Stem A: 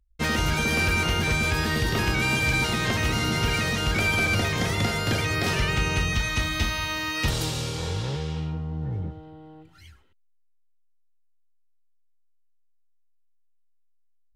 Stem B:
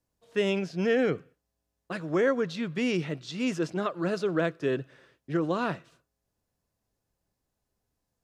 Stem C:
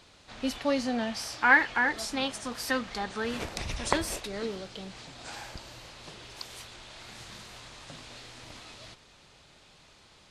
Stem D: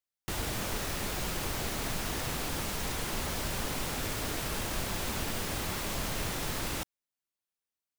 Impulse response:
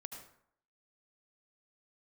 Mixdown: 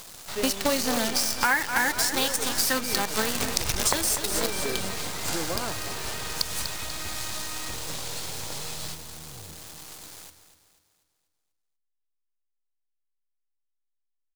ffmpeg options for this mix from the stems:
-filter_complex "[0:a]adelay=450,volume=-19dB,asplit=2[a][b];[b]volume=-11.5dB[c];[1:a]volume=-12.5dB[d];[2:a]highshelf=f=2.3k:g=11,acrusher=bits=5:dc=4:mix=0:aa=0.000001,bass=f=250:g=9,treble=f=4k:g=11,volume=0dB,asplit=2[e][f];[f]volume=-12dB[g];[3:a]highpass=1.1k,volume=-9.5dB[h];[c][g]amix=inputs=2:normalize=0,aecho=0:1:244|488|732|976|1220|1464:1|0.45|0.202|0.0911|0.041|0.0185[i];[a][d][e][h][i]amix=inputs=5:normalize=0,equalizer=f=750:t=o:w=2.9:g=9.5,acompressor=threshold=-21dB:ratio=6"

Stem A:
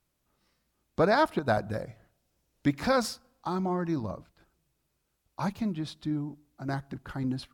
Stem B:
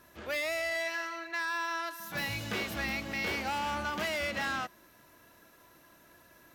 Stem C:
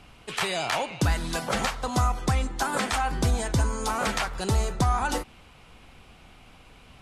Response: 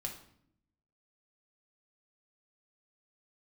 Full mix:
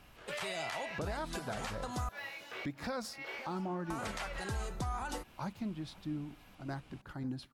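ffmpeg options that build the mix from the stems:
-filter_complex "[0:a]volume=-8dB,asplit=3[a][b][c];[b]volume=-23.5dB[d];[1:a]acrossover=split=3300[e][f];[f]acompressor=threshold=-50dB:ratio=4:attack=1:release=60[g];[e][g]amix=inputs=2:normalize=0,highpass=f=420:w=0.5412,highpass=f=420:w=1.3066,flanger=delay=16:depth=6:speed=1.4,volume=-4.5dB[h];[2:a]volume=-8.5dB,asplit=3[i][j][k];[i]atrim=end=2.09,asetpts=PTS-STARTPTS,afade=t=out:st=2.086:d=0.004:c=hsin[l];[j]atrim=start=2.09:end=3.9,asetpts=PTS-STARTPTS,volume=0[m];[k]atrim=start=3.9,asetpts=PTS-STARTPTS,afade=t=in:d=0.004:c=hsin[n];[l][m][n]concat=n=3:v=0:a=1[o];[c]apad=whole_len=288813[p];[h][p]sidechaincompress=threshold=-48dB:ratio=6:attack=8.3:release=229[q];[d]aecho=0:1:520|1040|1560|2080|2600|3120|3640:1|0.47|0.221|0.104|0.0488|0.0229|0.0108[r];[a][q][o][r]amix=inputs=4:normalize=0,alimiter=level_in=5dB:limit=-24dB:level=0:latency=1:release=154,volume=-5dB"

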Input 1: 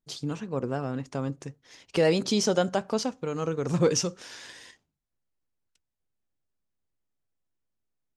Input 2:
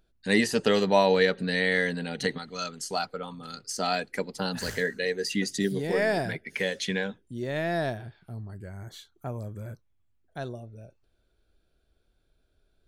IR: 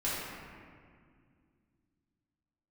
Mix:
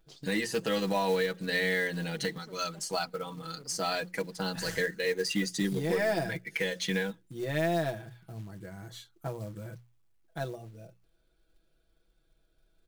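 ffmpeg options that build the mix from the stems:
-filter_complex "[0:a]asoftclip=type=hard:threshold=-23.5dB,highshelf=f=2.3k:g=-11,acompressor=threshold=-33dB:ratio=6,volume=-6.5dB[a];[1:a]bandreject=f=60:t=h:w=6,bandreject=f=120:t=h:w=6,bandreject=f=180:t=h:w=6,aecho=1:1:6.1:0.84,alimiter=limit=-16.5dB:level=0:latency=1:release=363,volume=-2.5dB,asplit=2[b][c];[c]apad=whole_len=360156[d];[a][d]sidechaincompress=threshold=-46dB:ratio=4:attack=8.9:release=366[e];[e][b]amix=inputs=2:normalize=0,aeval=exprs='0.119*(cos(1*acos(clip(val(0)/0.119,-1,1)))-cos(1*PI/2))+0.00299*(cos(6*acos(clip(val(0)/0.119,-1,1)))-cos(6*PI/2))+0.000944*(cos(7*acos(clip(val(0)/0.119,-1,1)))-cos(7*PI/2))+0.00335*(cos(8*acos(clip(val(0)/0.119,-1,1)))-cos(8*PI/2))':c=same,acrusher=bits=5:mode=log:mix=0:aa=0.000001"

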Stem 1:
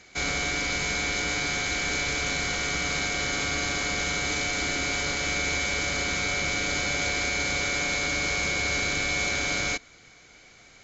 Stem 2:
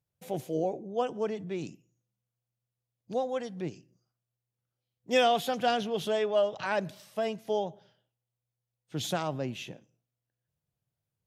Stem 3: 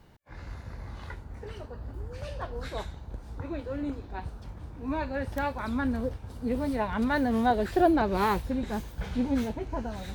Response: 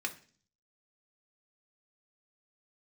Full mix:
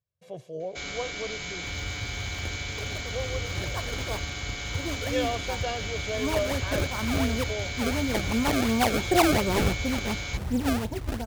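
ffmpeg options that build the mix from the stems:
-filter_complex "[0:a]equalizer=f=3.2k:w=2.7:g=7,adelay=600,volume=-9.5dB[a];[1:a]lowpass=6.4k,aecho=1:1:1.8:0.65,volume=-7dB[b];[2:a]equalizer=f=110:t=o:w=0.35:g=7,acrusher=samples=27:mix=1:aa=0.000001:lfo=1:lforange=43.2:lforate=2.8,adelay=1350,volume=1dB[c];[a][b][c]amix=inputs=3:normalize=0,equalizer=f=86:w=4.2:g=6"

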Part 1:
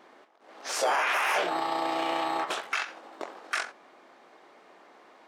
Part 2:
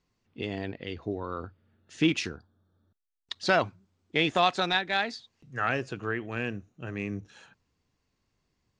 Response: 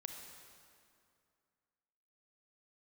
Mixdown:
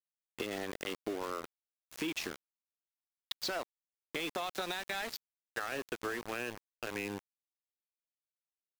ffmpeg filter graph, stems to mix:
-filter_complex "[0:a]alimiter=level_in=2dB:limit=-24dB:level=0:latency=1:release=263,volume=-2dB,asplit=2[a][b];[b]afreqshift=-1.6[c];[a][c]amix=inputs=2:normalize=1,volume=-8.5dB[d];[1:a]acontrast=22,alimiter=limit=-17dB:level=0:latency=1:release=89,acrossover=split=420[e][f];[f]acompressor=threshold=-43dB:ratio=1.5[g];[e][g]amix=inputs=2:normalize=0,volume=2dB,asplit=2[h][i];[i]apad=whole_len=232408[j];[d][j]sidechaincompress=threshold=-41dB:ratio=8:attack=37:release=114[k];[k][h]amix=inputs=2:normalize=0,highpass=410,aeval=exprs='val(0)*gte(abs(val(0)),0.0188)':c=same,acompressor=threshold=-33dB:ratio=6"

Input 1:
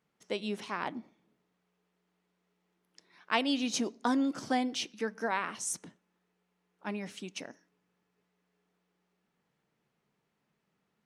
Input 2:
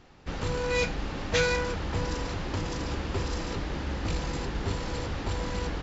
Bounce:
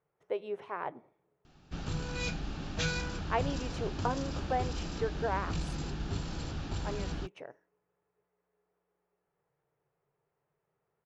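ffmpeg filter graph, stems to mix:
-filter_complex "[0:a]firequalizer=gain_entry='entry(140,0);entry(210,-18);entry(400,2);entry(4800,-25)':delay=0.05:min_phase=1,volume=0.5dB[a];[1:a]equalizer=f=160:t=o:w=0.33:g=6,equalizer=f=500:t=o:w=0.33:g=-10,equalizer=f=1k:t=o:w=0.33:g=-7,equalizer=f=2k:t=o:w=0.33:g=-9,adelay=1450,volume=-5dB[b];[a][b]amix=inputs=2:normalize=0"

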